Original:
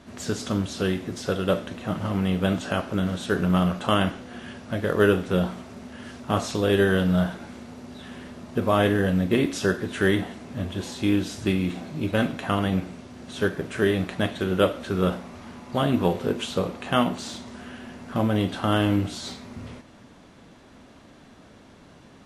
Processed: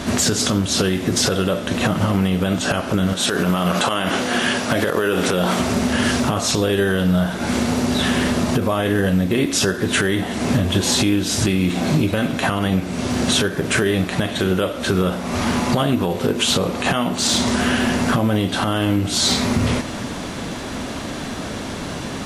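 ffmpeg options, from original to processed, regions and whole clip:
-filter_complex "[0:a]asettb=1/sr,asplit=3[s0][s1][s2];[s0]atrim=end=3.134[s3];[s1]atrim=start=3.13:end=5.6,asetpts=PTS-STARTPTS,afade=t=in:d=0.004:c=qsin,afade=t=out:st=2.466:d=0.004:c=qsin,highpass=f=360:p=1,acompressor=threshold=0.0224:ratio=4:attack=3.2:release=140:knee=1:detection=peak[s4];[s2]atrim=start=5.596[s5];[s3][s4]acrossfade=d=0.004:c1=hsin:c2=qsin[s6];[s6][s5]acrossfade=d=0.004:c1=qsin:c2=hsin,acompressor=threshold=0.0178:ratio=16,highshelf=f=4100:g=6.5,alimiter=level_in=26.6:limit=0.891:release=50:level=0:latency=1,volume=0.473"

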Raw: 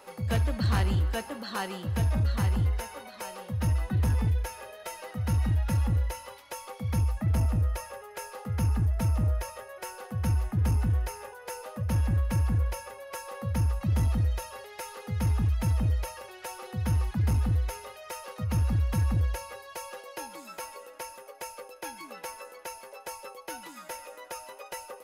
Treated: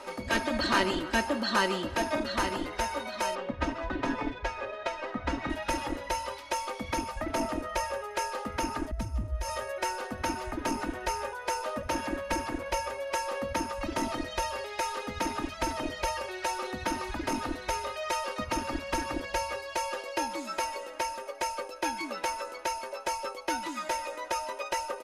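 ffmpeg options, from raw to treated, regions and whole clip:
-filter_complex "[0:a]asettb=1/sr,asplit=3[s0][s1][s2];[s0]atrim=end=3.354[s3];[s1]atrim=start=3.35:end=5.5,asetpts=PTS-STARTPTS,afade=t=in:d=0.004:c=qsin,afade=t=out:st=2.146:d=0.004:c=qsin,adynamicsmooth=sensitivity=6.5:basefreq=2000,aecho=1:1:7.2:0.51,atrim=end_sample=94815[s4];[s2]atrim=start=5.496[s5];[s3][s4]acrossfade=d=0.004:c1=hsin:c2=qsin[s6];[s6][s5]acrossfade=d=0.004:c1=qsin:c2=hsin,asettb=1/sr,asplit=3[s7][s8][s9];[s7]atrim=end=8.914[s10];[s8]atrim=start=8.91:end=9.72,asetpts=PTS-STARTPTS,afade=t=in:d=0.004:c=qsin,afade=t=out:st=0.806:d=0.004:c=qsin,bass=f=250:g=4,treble=f=4000:g=5,acompressor=threshold=0.0158:ratio=8:attack=3.2:release=140:knee=1:detection=peak[s11];[s9]atrim=start=9.716[s12];[s10][s11]acrossfade=d=0.004:c1=hsin:c2=qsin[s13];[s13][s12]acrossfade=d=0.004:c1=qsin:c2=hsin,lowpass=7600,afftfilt=real='re*lt(hypot(re,im),0.178)':imag='im*lt(hypot(re,im),0.178)':win_size=1024:overlap=0.75,aecho=1:1:3.2:0.59,volume=2.24"

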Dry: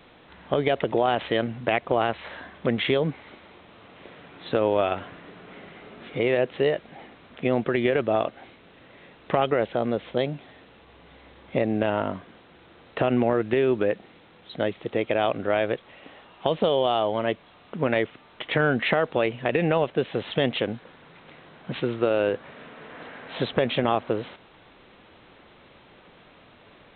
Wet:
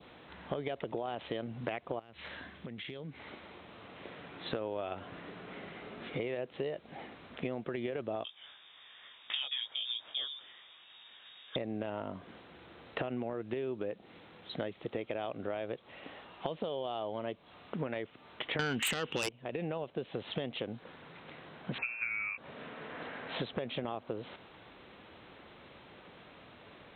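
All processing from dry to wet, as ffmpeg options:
-filter_complex "[0:a]asettb=1/sr,asplit=3[s0][s1][s2];[s0]atrim=end=1.994[s3];[s1]atrim=start=1.99:end=3.2,asetpts=PTS-STARTPTS,afade=t=in:d=0.004:c=qsin,afade=t=out:st=1.206:d=0.004:c=qsin,equalizer=f=770:t=o:w=2.2:g=-8,acompressor=threshold=0.0141:ratio=16:attack=3.2:release=140:knee=1:detection=peak[s4];[s2]atrim=start=3.196[s5];[s3][s4]acrossfade=d=0.004:c1=hsin:c2=qsin[s6];[s6][s5]acrossfade=d=0.004:c1=qsin:c2=hsin,asettb=1/sr,asplit=3[s7][s8][s9];[s7]atrim=end=8.244[s10];[s8]atrim=start=8.24:end=11.56,asetpts=PTS-STARTPTS,afade=t=in:d=0.004:c=qsin,afade=t=out:st=3.316:d=0.004:c=qsin,flanger=delay=16:depth=5.3:speed=2.9,lowpass=f=3200:t=q:w=0.5098,lowpass=f=3200:t=q:w=0.6013,lowpass=f=3200:t=q:w=0.9,lowpass=f=3200:t=q:w=2.563,afreqshift=-3800[s11];[s9]atrim=start=11.556[s12];[s10][s11]acrossfade=d=0.004:c1=hsin:c2=qsin[s13];[s13][s12]acrossfade=d=0.004:c1=qsin:c2=hsin,asettb=1/sr,asplit=3[s14][s15][s16];[s14]atrim=end=18.594[s17];[s15]atrim=start=18.59:end=19.29,asetpts=PTS-STARTPTS,afade=t=in:d=0.004:c=qsin,afade=t=out:st=0.696:d=0.004:c=qsin,lowpass=f=2900:t=q:w=7.1,equalizer=f=650:t=o:w=0.54:g=-12.5,aeval=exprs='0.794*sin(PI/2*4.47*val(0)/0.794)':c=same[s18];[s16]atrim=start=19.286[s19];[s17][s18]acrossfade=d=0.004:c1=hsin:c2=qsin[s20];[s20][s19]acrossfade=d=0.004:c1=qsin:c2=hsin,asettb=1/sr,asplit=3[s21][s22][s23];[s21]atrim=end=21.784[s24];[s22]atrim=start=21.78:end=22.38,asetpts=PTS-STARTPTS,afade=t=in:d=0.004:c=qsin,afade=t=out:st=0.596:d=0.004:c=qsin,lowpass=f=2400:t=q:w=0.5098,lowpass=f=2400:t=q:w=0.6013,lowpass=f=2400:t=q:w=0.9,lowpass=f=2400:t=q:w=2.563,afreqshift=-2800,asplit=2[s25][s26];[s26]adelay=15,volume=0.473[s27];[s25][s27]amix=inputs=2:normalize=0,atrim=end_sample=26460[s28];[s23]atrim=start=22.376[s29];[s24][s28]acrossfade=d=0.004:c1=hsin:c2=qsin[s30];[s30][s29]acrossfade=d=0.004:c1=qsin:c2=hsin,highpass=46,adynamicequalizer=threshold=0.00708:dfrequency=1800:dqfactor=1.4:tfrequency=1800:tqfactor=1.4:attack=5:release=100:ratio=0.375:range=3:mode=cutabove:tftype=bell,acompressor=threshold=0.0251:ratio=6,volume=0.794"

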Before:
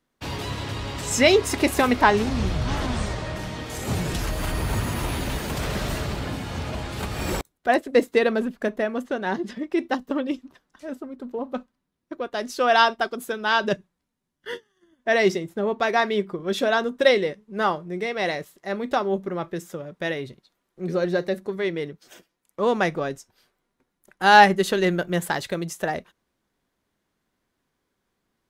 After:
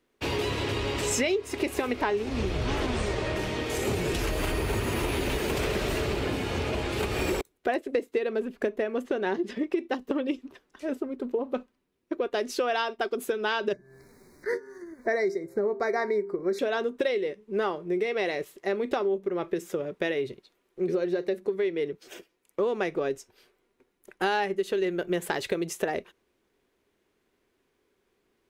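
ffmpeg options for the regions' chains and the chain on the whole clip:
-filter_complex "[0:a]asettb=1/sr,asplit=3[s0][s1][s2];[s0]atrim=end=13.734[s3];[s1]atrim=start=13.73:end=16.59,asetpts=PTS-STARTPTS,afade=t=in:d=0.004:c=qsin,afade=t=out:st=2.856:d=0.004:c=qsin,bandreject=f=132.8:t=h:w=4,bandreject=f=265.6:t=h:w=4,bandreject=f=398.4:t=h:w=4,bandreject=f=531.2:t=h:w=4,bandreject=f=664:t=h:w=4,bandreject=f=796.8:t=h:w=4,bandreject=f=929.6:t=h:w=4,bandreject=f=1062.4:t=h:w=4,bandreject=f=1195.2:t=h:w=4,bandreject=f=1328:t=h:w=4,bandreject=f=1460.8:t=h:w=4,bandreject=f=1593.6:t=h:w=4,bandreject=f=1726.4:t=h:w=4,acompressor=mode=upward:threshold=0.0158:ratio=2.5:attack=3.2:release=140:knee=2.83:detection=peak,asuperstop=centerf=3000:order=12:qfactor=1.9[s4];[s2]atrim=start=16.586[s5];[s3][s4]acrossfade=d=0.004:c1=hsin:c2=qsin[s6];[s6][s5]acrossfade=d=0.004:c1=qsin:c2=hsin,equalizer=f=160:t=o:w=0.67:g=-4,equalizer=f=400:t=o:w=0.67:g=11,equalizer=f=2500:t=o:w=0.67:g=6,acompressor=threshold=0.0631:ratio=10"

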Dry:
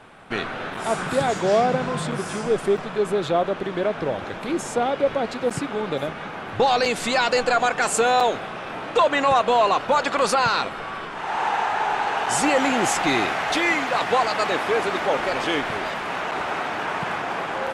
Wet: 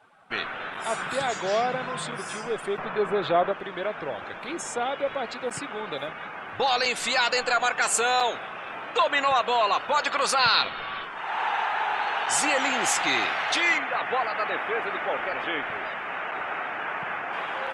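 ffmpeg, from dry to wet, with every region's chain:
-filter_complex "[0:a]asettb=1/sr,asplit=3[s0][s1][s2];[s0]atrim=end=2.784[s3];[s1]atrim=start=2.78:end=3.52,asetpts=PTS-STARTPTS,afade=t=in:d=0.004:c=qsin,afade=t=out:st=0.736:d=0.004:c=qsin,lowpass=f=1800:p=1,acontrast=58[s4];[s2]atrim=start=3.516[s5];[s3][s4]acrossfade=d=0.004:c1=hsin:c2=qsin[s6];[s6][s5]acrossfade=d=0.004:c1=qsin:c2=hsin,asettb=1/sr,asplit=3[s7][s8][s9];[s7]atrim=end=10.394[s10];[s8]atrim=start=10.39:end=11.03,asetpts=PTS-STARTPTS,afade=t=in:d=0.004:c=qsin,afade=t=out:st=0.636:d=0.004:c=qsin,lowpass=f=4100:t=q:w=2,lowshelf=f=190:g=7[s11];[s9]atrim=start=11.026[s12];[s10][s11]acrossfade=d=0.004:c1=hsin:c2=qsin[s13];[s13][s12]acrossfade=d=0.004:c1=qsin:c2=hsin,asettb=1/sr,asplit=3[s14][s15][s16];[s14]atrim=end=13.784[s17];[s15]atrim=start=13.78:end=17.33,asetpts=PTS-STARTPTS,afade=t=in:d=0.004:c=qsin,afade=t=out:st=3.546:d=0.004:c=qsin,acrossover=split=2700[s18][s19];[s19]acompressor=threshold=0.00398:ratio=4:attack=1:release=60[s20];[s18][s20]amix=inputs=2:normalize=0,equalizer=f=990:w=4.4:g=-4[s21];[s16]atrim=start=17.326[s22];[s17][s21]acrossfade=d=0.004:c1=hsin:c2=qsin[s23];[s23][s22]acrossfade=d=0.004:c1=qsin:c2=hsin,afftdn=nr=14:nf=-41,tiltshelf=f=660:g=-7,volume=0.501"

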